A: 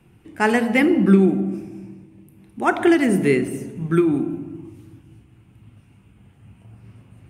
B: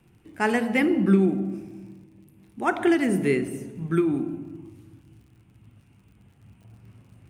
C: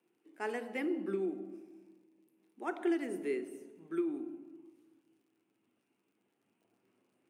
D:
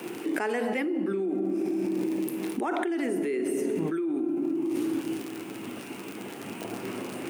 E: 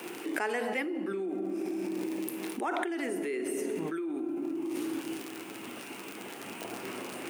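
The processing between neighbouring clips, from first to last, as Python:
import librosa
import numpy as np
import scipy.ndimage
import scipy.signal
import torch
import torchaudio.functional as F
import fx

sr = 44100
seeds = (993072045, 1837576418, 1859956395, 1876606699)

y1 = fx.dmg_crackle(x, sr, seeds[0], per_s=66.0, level_db=-46.0)
y1 = y1 * 10.0 ** (-5.0 / 20.0)
y2 = fx.ladder_highpass(y1, sr, hz=280.0, resonance_pct=40)
y2 = y2 * 10.0 ** (-7.5 / 20.0)
y3 = fx.env_flatten(y2, sr, amount_pct=100)
y4 = fx.low_shelf(y3, sr, hz=360.0, db=-10.5)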